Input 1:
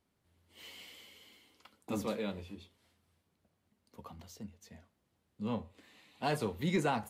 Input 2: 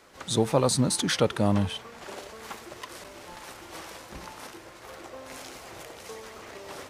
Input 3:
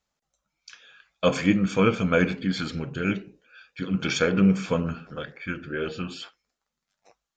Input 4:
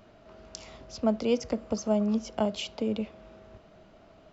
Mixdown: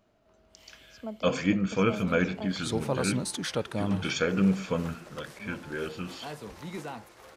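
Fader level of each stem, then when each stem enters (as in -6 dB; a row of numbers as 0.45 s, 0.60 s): -7.5 dB, -7.0 dB, -4.5 dB, -12.5 dB; 0.00 s, 2.35 s, 0.00 s, 0.00 s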